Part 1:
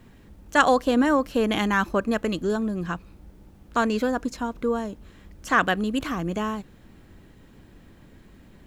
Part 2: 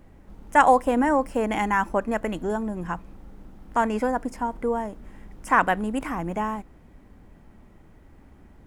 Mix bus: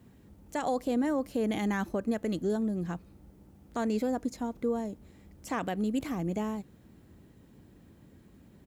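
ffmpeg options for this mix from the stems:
-filter_complex "[0:a]highpass=71,equalizer=f=2k:w=0.38:g=-8.5,volume=-3dB[a];[1:a]highpass=f=1.3k:p=1,adelay=0.4,volume=-13.5dB[b];[a][b]amix=inputs=2:normalize=0,alimiter=limit=-21.5dB:level=0:latency=1:release=75"

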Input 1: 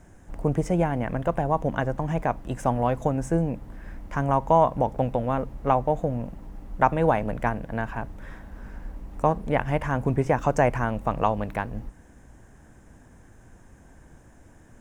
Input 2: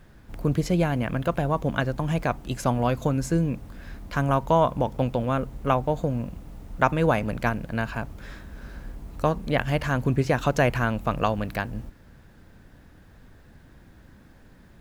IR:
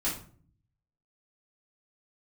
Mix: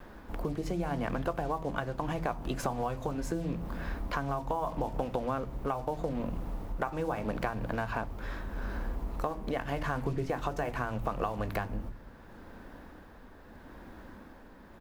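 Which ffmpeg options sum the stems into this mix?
-filter_complex "[0:a]lowshelf=f=160:g=7,flanger=delay=16:depth=7.3:speed=0.54,acrusher=bits=5:mix=0:aa=0.5,volume=-11dB,asplit=3[a][b][c];[b]volume=-8dB[d];[1:a]equalizer=f=125:t=o:w=1:g=-10,equalizer=f=250:t=o:w=1:g=5,equalizer=f=500:t=o:w=1:g=4,equalizer=f=1k:t=o:w=1:g=8,equalizer=f=8k:t=o:w=1:g=-5,adelay=2.4,volume=2dB[e];[c]apad=whole_len=652991[f];[e][f]sidechaincompress=threshold=-39dB:ratio=8:attack=6.4:release=252[g];[2:a]atrim=start_sample=2205[h];[d][h]afir=irnorm=-1:irlink=0[i];[a][g][i]amix=inputs=3:normalize=0,tremolo=f=0.79:d=0.38,acompressor=threshold=-29dB:ratio=4"

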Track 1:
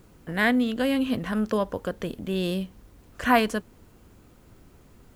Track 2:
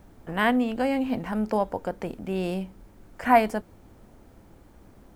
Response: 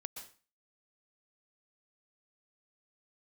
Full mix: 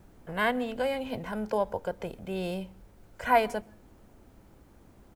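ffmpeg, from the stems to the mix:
-filter_complex "[0:a]volume=-10.5dB[a];[1:a]adelay=2,volume=-5.5dB,asplit=2[b][c];[c]volume=-13.5dB[d];[2:a]atrim=start_sample=2205[e];[d][e]afir=irnorm=-1:irlink=0[f];[a][b][f]amix=inputs=3:normalize=0"

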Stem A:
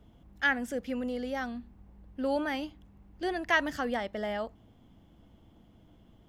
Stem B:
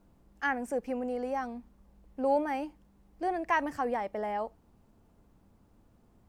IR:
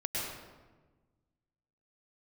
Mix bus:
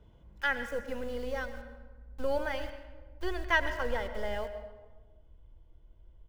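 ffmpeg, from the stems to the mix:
-filter_complex "[0:a]highshelf=f=7.2k:g=-10.5,aecho=1:1:2:0.52,volume=-3.5dB,asplit=2[a][b];[b]volume=-12.5dB[c];[1:a]acrossover=split=390|3000[d][e][f];[e]acompressor=threshold=-42dB:ratio=5[g];[d][g][f]amix=inputs=3:normalize=0,acrusher=bits=5:dc=4:mix=0:aa=0.000001,adelay=0.4,volume=-7.5dB,asplit=3[h][i][j];[i]volume=-14.5dB[k];[j]apad=whole_len=277389[l];[a][l]sidechaingate=range=-33dB:threshold=-51dB:ratio=16:detection=peak[m];[2:a]atrim=start_sample=2205[n];[c][k]amix=inputs=2:normalize=0[o];[o][n]afir=irnorm=-1:irlink=0[p];[m][h][p]amix=inputs=3:normalize=0,asubboost=boost=9:cutoff=51"

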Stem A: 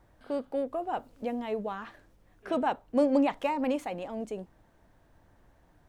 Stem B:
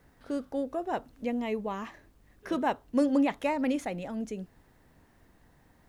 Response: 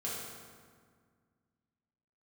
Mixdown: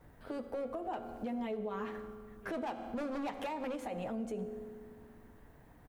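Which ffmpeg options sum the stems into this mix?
-filter_complex "[0:a]volume=25.5dB,asoftclip=hard,volume=-25.5dB,volume=-4dB,asplit=3[a][b][c];[b]volume=-10.5dB[d];[1:a]acompressor=threshold=-33dB:ratio=6,equalizer=f=5.2k:w=0.88:g=-14.5,adelay=9.1,volume=0.5dB,asplit=2[e][f];[f]volume=-14.5dB[g];[c]apad=whole_len=259776[h];[e][h]sidechaincompress=threshold=-37dB:ratio=8:attack=16:release=134[i];[2:a]atrim=start_sample=2205[j];[d][g]amix=inputs=2:normalize=0[k];[k][j]afir=irnorm=-1:irlink=0[l];[a][i][l]amix=inputs=3:normalize=0,alimiter=level_in=6.5dB:limit=-24dB:level=0:latency=1:release=133,volume=-6.5dB"

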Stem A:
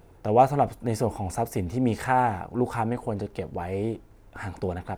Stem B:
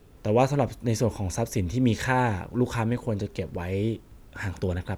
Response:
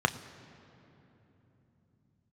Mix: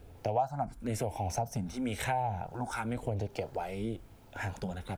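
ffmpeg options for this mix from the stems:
-filter_complex "[0:a]aecho=1:1:1.3:0.52,acrossover=split=570[a][b];[a]aeval=exprs='val(0)*(1-0.5/2+0.5/2*cos(2*PI*1.3*n/s))':c=same[c];[b]aeval=exprs='val(0)*(1-0.5/2-0.5/2*cos(2*PI*1.3*n/s))':c=same[d];[c][d]amix=inputs=2:normalize=0,asplit=2[e][f];[f]afreqshift=1[g];[e][g]amix=inputs=2:normalize=1,volume=1dB,asplit=2[h][i];[1:a]highpass=f=140:w=0.5412,highpass=f=140:w=1.3066,acompressor=threshold=-26dB:ratio=6,volume=-3.5dB[j];[i]apad=whole_len=219542[k];[j][k]sidechaincompress=threshold=-29dB:ratio=8:attack=16:release=422[l];[h][l]amix=inputs=2:normalize=0,acompressor=threshold=-29dB:ratio=4"

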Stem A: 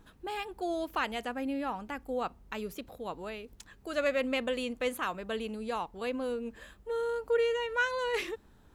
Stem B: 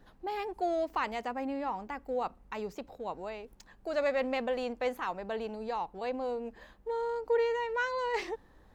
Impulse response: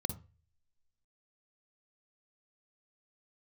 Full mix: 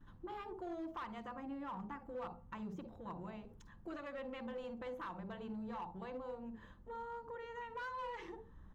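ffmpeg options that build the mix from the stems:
-filter_complex "[0:a]afwtdn=0.0178,acompressor=threshold=-39dB:ratio=6,volume=-2dB,asplit=2[a][b];[b]volume=-8dB[c];[1:a]alimiter=limit=-24dB:level=0:latency=1:release=455,adelay=6.2,volume=-2.5dB,asplit=2[d][e];[e]volume=-5.5dB[f];[2:a]atrim=start_sample=2205[g];[c][f]amix=inputs=2:normalize=0[h];[h][g]afir=irnorm=-1:irlink=0[i];[a][d][i]amix=inputs=3:normalize=0,volume=34dB,asoftclip=hard,volume=-34dB,highshelf=f=4k:g=-11.5,acompressor=threshold=-50dB:ratio=1.5"

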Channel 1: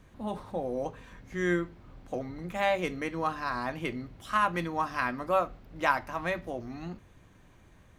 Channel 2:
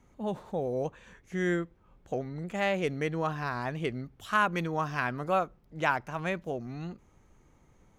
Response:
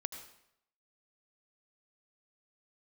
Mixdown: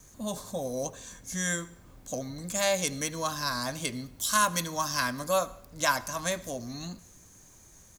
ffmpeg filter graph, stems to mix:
-filter_complex "[0:a]acrossover=split=470[a][b];[a]acompressor=threshold=-35dB:ratio=6[c];[c][b]amix=inputs=2:normalize=0,volume=-4dB,asplit=2[d][e];[e]volume=-10.5dB[f];[1:a]aexciter=amount=13.8:drive=8.6:freq=3.8k,adelay=1.4,volume=-8dB,asplit=2[g][h];[h]volume=-9.5dB[i];[2:a]atrim=start_sample=2205[j];[f][i]amix=inputs=2:normalize=0[k];[k][j]afir=irnorm=-1:irlink=0[l];[d][g][l]amix=inputs=3:normalize=0"

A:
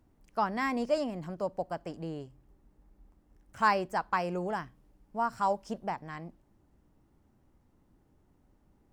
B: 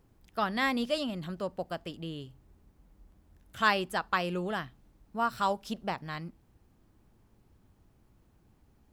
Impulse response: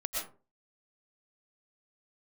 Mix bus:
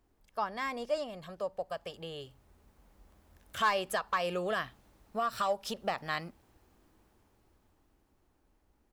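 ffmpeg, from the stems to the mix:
-filter_complex "[0:a]asoftclip=type=hard:threshold=-17dB,volume=-3.5dB,asplit=2[a][b];[1:a]highpass=f=100:p=1,asoftclip=type=tanh:threshold=-19dB,dynaudnorm=f=260:g=17:m=13.5dB,adelay=1.3,volume=-6.5dB[c];[b]apad=whole_len=393867[d];[c][d]sidechaincompress=threshold=-36dB:ratio=10:attack=6.9:release=225[e];[a][e]amix=inputs=2:normalize=0,equalizer=f=150:w=0.86:g=-10.5"

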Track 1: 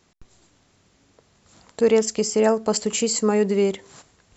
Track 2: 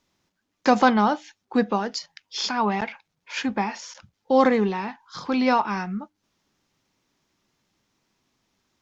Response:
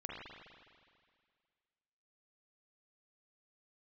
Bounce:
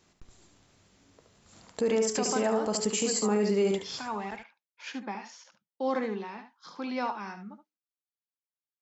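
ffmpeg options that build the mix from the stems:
-filter_complex "[0:a]bandreject=f=61.59:t=h:w=4,bandreject=f=123.18:t=h:w=4,bandreject=f=184.77:t=h:w=4,bandreject=f=246.36:t=h:w=4,bandreject=f=307.95:t=h:w=4,bandreject=f=369.54:t=h:w=4,bandreject=f=431.13:t=h:w=4,bandreject=f=492.72:t=h:w=4,bandreject=f=554.31:t=h:w=4,bandreject=f=615.9:t=h:w=4,bandreject=f=677.49:t=h:w=4,bandreject=f=739.08:t=h:w=4,bandreject=f=800.67:t=h:w=4,bandreject=f=862.26:t=h:w=4,bandreject=f=923.85:t=h:w=4,bandreject=f=985.44:t=h:w=4,bandreject=f=1.04703k:t=h:w=4,bandreject=f=1.10862k:t=h:w=4,bandreject=f=1.17021k:t=h:w=4,bandreject=f=1.2318k:t=h:w=4,bandreject=f=1.29339k:t=h:w=4,bandreject=f=1.35498k:t=h:w=4,bandreject=f=1.41657k:t=h:w=4,bandreject=f=1.47816k:t=h:w=4,bandreject=f=1.53975k:t=h:w=4,bandreject=f=1.60134k:t=h:w=4,bandreject=f=1.66293k:t=h:w=4,bandreject=f=1.72452k:t=h:w=4,bandreject=f=1.78611k:t=h:w=4,bandreject=f=1.8477k:t=h:w=4,bandreject=f=1.90929k:t=h:w=4,bandreject=f=1.97088k:t=h:w=4,bandreject=f=2.03247k:t=h:w=4,bandreject=f=2.09406k:t=h:w=4,bandreject=f=2.15565k:t=h:w=4,bandreject=f=2.21724k:t=h:w=4,bandreject=f=2.27883k:t=h:w=4,volume=-3dB,asplit=2[a][b];[b]volume=-6dB[c];[1:a]agate=range=-33dB:threshold=-46dB:ratio=3:detection=peak,highpass=f=200:w=0.5412,highpass=f=200:w=1.3066,adelay=1500,volume=-11.5dB,asplit=2[d][e];[e]volume=-10dB[f];[c][f]amix=inputs=2:normalize=0,aecho=0:1:72:1[g];[a][d][g]amix=inputs=3:normalize=0,alimiter=limit=-18.5dB:level=0:latency=1:release=83"

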